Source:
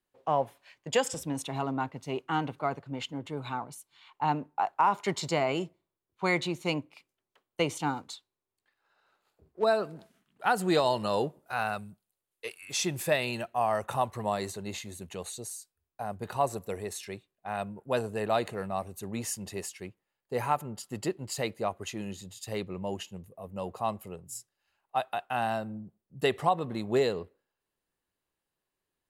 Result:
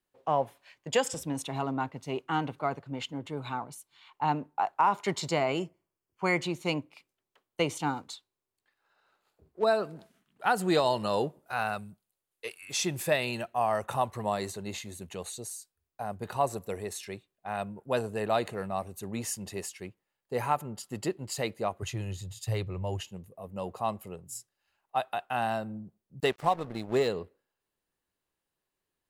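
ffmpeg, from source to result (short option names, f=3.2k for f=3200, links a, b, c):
-filter_complex "[0:a]asettb=1/sr,asplit=3[a][b][c];[a]atrim=end=5.604[d];[b]atrim=start=5.6:end=6.44,asetpts=PTS-STARTPTS,afade=t=in:d=0.004:c=qsin,afade=t=out:st=0.836:d=0.004:c=qsin,asuperstop=centerf=3800:order=4:qfactor=4[e];[c]atrim=start=6.436[f];[d][e]acrossfade=d=0.004:c1=hsin:c2=qsin[g];[g][f]acrossfade=d=0.004:c1=qsin:c2=hsin,asettb=1/sr,asplit=3[h][i][j];[h]atrim=end=21.824[k];[i]atrim=start=21.82:end=23.08,asetpts=PTS-STARTPTS,afade=t=in:d=0.004:c=qsin,afade=t=out:st=1.256:d=0.004:c=qsin,lowshelf=f=160:t=q:w=3:g=7.5[l];[j]atrim=start=23.076[m];[k][l]acrossfade=d=0.004:c1=hsin:c2=qsin[n];[n][m]acrossfade=d=0.004:c1=qsin:c2=hsin,asettb=1/sr,asplit=3[o][p][q];[o]atrim=end=26.204[r];[p]atrim=start=26.2:end=27.08,asetpts=PTS-STARTPTS,afade=t=in:d=0.004:c=qsin,afade=t=out:st=0.876:d=0.004:c=qsin,aeval=exprs='sgn(val(0))*max(abs(val(0))-0.00794,0)':c=same[s];[q]atrim=start=27.076[t];[r][s]acrossfade=d=0.004:c1=hsin:c2=qsin[u];[u][t]acrossfade=d=0.004:c1=qsin:c2=hsin"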